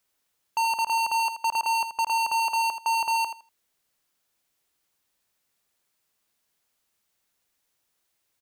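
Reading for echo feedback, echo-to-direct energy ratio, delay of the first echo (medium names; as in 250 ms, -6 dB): 18%, -10.0 dB, 81 ms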